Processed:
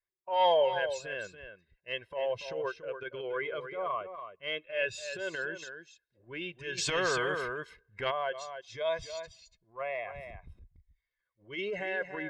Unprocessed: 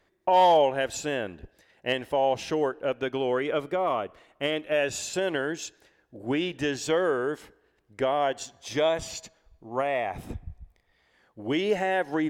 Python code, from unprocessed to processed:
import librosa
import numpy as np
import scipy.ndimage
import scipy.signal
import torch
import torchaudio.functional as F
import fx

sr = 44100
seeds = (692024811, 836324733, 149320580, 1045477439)

y = fx.bin_expand(x, sr, power=1.5)
y = fx.peak_eq(y, sr, hz=2100.0, db=9.0, octaves=2.8)
y = y + 0.75 * np.pad(y, (int(1.9 * sr / 1000.0), 0))[:len(y)]
y = fx.transient(y, sr, attack_db=-11, sustain_db=2)
y = fx.air_absorb(y, sr, metres=89.0)
y = y + 10.0 ** (-9.5 / 20.0) * np.pad(y, (int(285 * sr / 1000.0), 0))[:len(y)]
y = fx.spectral_comp(y, sr, ratio=2.0, at=(6.77, 8.1), fade=0.02)
y = y * librosa.db_to_amplitude(-9.0)